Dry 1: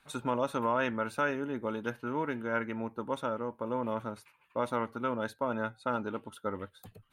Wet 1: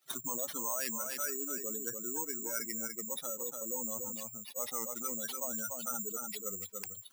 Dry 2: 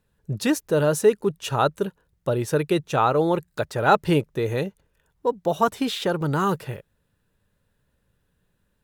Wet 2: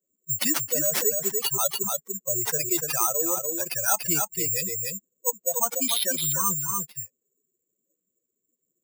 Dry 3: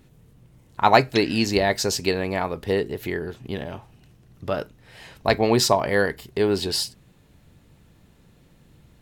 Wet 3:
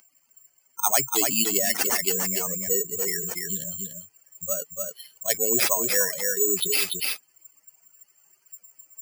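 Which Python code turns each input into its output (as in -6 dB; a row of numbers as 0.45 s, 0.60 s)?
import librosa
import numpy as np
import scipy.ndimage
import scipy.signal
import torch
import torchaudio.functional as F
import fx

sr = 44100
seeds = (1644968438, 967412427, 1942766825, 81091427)

p1 = fx.bin_expand(x, sr, power=3.0)
p2 = fx.low_shelf(p1, sr, hz=360.0, db=-7.5)
p3 = fx.notch(p2, sr, hz=870.0, q=12.0)
p4 = fx.rider(p3, sr, range_db=4, speed_s=0.5)
p5 = p3 + (p4 * librosa.db_to_amplitude(-1.5))
p6 = (np.kron(p5[::6], np.eye(6)[0]) * 6)[:len(p5)]
p7 = scipy.signal.sosfilt(scipy.signal.butter(2, 180.0, 'highpass', fs=sr, output='sos'), p6)
p8 = fx.high_shelf(p7, sr, hz=6900.0, db=-4.0)
p9 = p8 + fx.echo_single(p8, sr, ms=291, db=-12.5, dry=0)
p10 = fx.env_flatten(p9, sr, amount_pct=70)
y = p10 * librosa.db_to_amplitude(-12.0)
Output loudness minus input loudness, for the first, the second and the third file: -1.5 LU, -0.5 LU, 0.0 LU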